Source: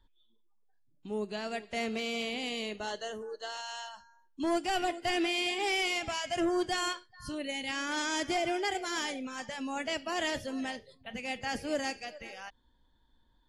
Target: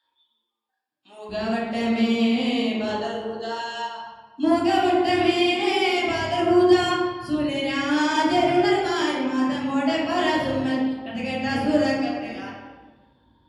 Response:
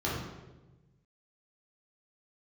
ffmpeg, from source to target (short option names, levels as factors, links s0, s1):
-filter_complex "[0:a]asetnsamples=n=441:p=0,asendcmd='1.29 highpass f 130',highpass=1000[s0];[1:a]atrim=start_sample=2205,asetrate=34839,aresample=44100[s1];[s0][s1]afir=irnorm=-1:irlink=0"